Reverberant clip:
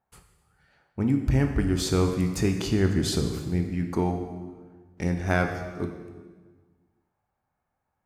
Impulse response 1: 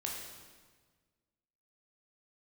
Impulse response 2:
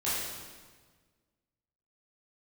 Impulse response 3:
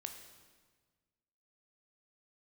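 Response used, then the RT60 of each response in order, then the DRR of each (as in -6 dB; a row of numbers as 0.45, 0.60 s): 3; 1.5, 1.5, 1.5 s; -2.0, -11.0, 4.5 dB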